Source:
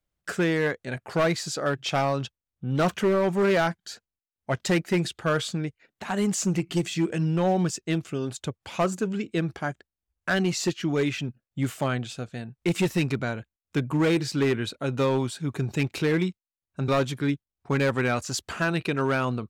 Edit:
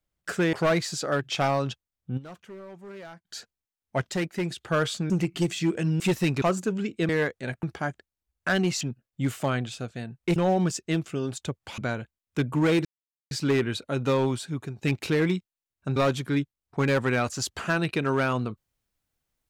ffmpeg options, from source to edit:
ffmpeg -i in.wav -filter_complex "[0:a]asplit=16[link_01][link_02][link_03][link_04][link_05][link_06][link_07][link_08][link_09][link_10][link_11][link_12][link_13][link_14][link_15][link_16];[link_01]atrim=end=0.532[link_17];[link_02]atrim=start=1.068:end=2.83,asetpts=PTS-STARTPTS,afade=type=out:start_time=1.642:duration=0.12:curve=exp:silence=0.0944061[link_18];[link_03]atrim=start=2.83:end=3.68,asetpts=PTS-STARTPTS,volume=-20.5dB[link_19];[link_04]atrim=start=3.68:end=4.632,asetpts=PTS-STARTPTS,afade=type=in:duration=0.12:curve=exp:silence=0.0944061[link_20];[link_05]atrim=start=4.628:end=5.122,asetpts=PTS-STARTPTS,volume=-5dB[link_21];[link_06]atrim=start=5.118:end=5.642[link_22];[link_07]atrim=start=6.448:end=7.352[link_23];[link_08]atrim=start=12.738:end=13.162[link_24];[link_09]atrim=start=8.768:end=9.442[link_25];[link_10]atrim=start=0.528:end=1.072[link_26];[link_11]atrim=start=9.438:end=10.622[link_27];[link_12]atrim=start=11.188:end=12.742[link_28];[link_13]atrim=start=7.348:end=8.772[link_29];[link_14]atrim=start=13.158:end=14.23,asetpts=PTS-STARTPTS,afade=type=out:start_time=1.068:duration=0.004:curve=hsin,apad=pad_dur=0.46[link_30];[link_15]atrim=start=14.23:end=15.75,asetpts=PTS-STARTPTS,afade=type=in:duration=0.004:curve=hsin,afade=type=out:start_time=1.14:duration=0.38:silence=0.0841395[link_31];[link_16]atrim=start=15.75,asetpts=PTS-STARTPTS,afade=type=in:duration=0.004:curve=hsin:silence=0.0841395[link_32];[link_18][link_19][link_20]concat=n=3:v=0:a=1[link_33];[link_17][link_33]acrossfade=duration=0.004:curve1=hsin:curve2=hsin[link_34];[link_34][link_21]acrossfade=duration=0.004:curve1=hsin:curve2=hsin[link_35];[link_35][link_22]acrossfade=duration=0.004:curve1=hsin:curve2=hsin[link_36];[link_36][link_23]acrossfade=duration=0.004:curve1=hsin:curve2=hsin[link_37];[link_37][link_24]acrossfade=duration=0.004:curve1=hsin:curve2=hsin[link_38];[link_38][link_25]acrossfade=duration=0.004:curve1=hsin:curve2=hsin[link_39];[link_39][link_26]acrossfade=duration=0.004:curve1=hsin:curve2=hsin[link_40];[link_40][link_27]acrossfade=duration=0.004:curve1=hsin:curve2=hsin[link_41];[link_41][link_28]acrossfade=duration=0.004:curve1=hsin:curve2=hsin[link_42];[link_42][link_29]acrossfade=duration=0.004:curve1=hsin:curve2=hsin[link_43];[link_30][link_31][link_32]concat=n=3:v=0:a=1[link_44];[link_43][link_44]acrossfade=duration=0.004:curve1=hsin:curve2=hsin" out.wav

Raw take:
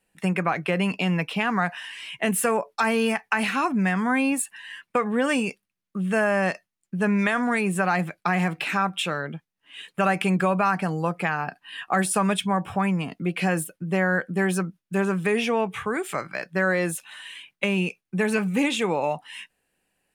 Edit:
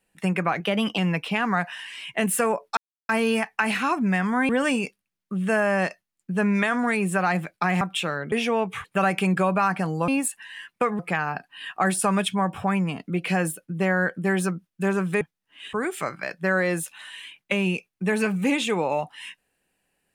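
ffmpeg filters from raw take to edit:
ffmpeg -i in.wav -filter_complex "[0:a]asplit=12[link_01][link_02][link_03][link_04][link_05][link_06][link_07][link_08][link_09][link_10][link_11][link_12];[link_01]atrim=end=0.604[link_13];[link_02]atrim=start=0.6:end=1.03,asetpts=PTS-STARTPTS,asetrate=49833,aresample=44100,atrim=end_sample=16781,asetpts=PTS-STARTPTS[link_14];[link_03]atrim=start=1.026:end=2.82,asetpts=PTS-STARTPTS,afade=type=out:start_time=1.79:duration=0.004:curve=hsin,apad=pad_dur=0.32[link_15];[link_04]atrim=start=2.82:end=4.222,asetpts=PTS-STARTPTS,afade=type=in:duration=0.004:curve=hsin[link_16];[link_05]atrim=start=5.128:end=8.452[link_17];[link_06]atrim=start=8.838:end=9.352[link_18];[link_07]atrim=start=15.328:end=15.852[link_19];[link_08]atrim=start=9.868:end=11.112[link_20];[link_09]atrim=start=4.218:end=5.132[link_21];[link_10]atrim=start=11.108:end=15.332[link_22];[link_11]atrim=start=9.348:end=9.872[link_23];[link_12]atrim=start=15.848[link_24];[link_13][link_14]acrossfade=duration=0.004:curve1=hsin:curve2=hsin[link_25];[link_15][link_16]concat=n=2:v=0:a=1[link_26];[link_25][link_26]acrossfade=duration=0.004:curve1=hsin:curve2=hsin[link_27];[link_27][link_17]acrossfade=duration=0.004:curve1=hsin:curve2=hsin[link_28];[link_28][link_18]acrossfade=duration=0.004:curve1=hsin:curve2=hsin[link_29];[link_29][link_19]acrossfade=duration=0.004:curve1=hsin:curve2=hsin[link_30];[link_30][link_20]acrossfade=duration=0.004:curve1=hsin:curve2=hsin[link_31];[link_31][link_21]acrossfade=duration=0.004:curve1=hsin:curve2=hsin[link_32];[link_32][link_22]acrossfade=duration=0.004:curve1=hsin:curve2=hsin[link_33];[link_33][link_23]acrossfade=duration=0.004:curve1=hsin:curve2=hsin[link_34];[link_34][link_24]acrossfade=duration=0.004:curve1=hsin:curve2=hsin" out.wav

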